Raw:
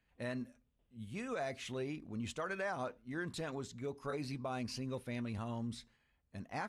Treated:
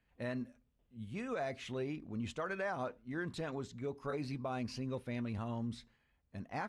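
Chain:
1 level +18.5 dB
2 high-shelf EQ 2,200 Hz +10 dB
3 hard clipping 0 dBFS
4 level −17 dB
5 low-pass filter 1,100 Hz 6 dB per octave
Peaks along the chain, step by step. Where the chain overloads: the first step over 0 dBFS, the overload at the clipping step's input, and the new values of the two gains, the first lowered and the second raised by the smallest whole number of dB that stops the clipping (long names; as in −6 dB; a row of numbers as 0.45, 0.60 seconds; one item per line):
−9.5, −5.5, −5.5, −22.5, −27.0 dBFS
no step passes full scale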